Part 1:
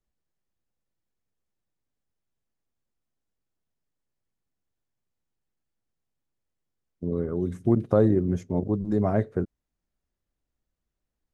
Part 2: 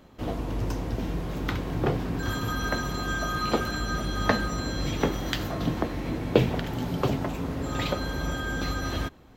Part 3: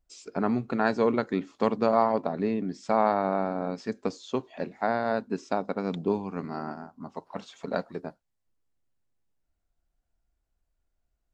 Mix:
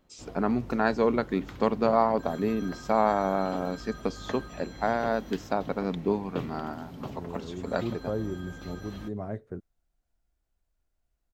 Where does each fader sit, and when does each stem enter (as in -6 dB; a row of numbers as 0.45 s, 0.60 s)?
-11.5 dB, -14.5 dB, 0.0 dB; 0.15 s, 0.00 s, 0.00 s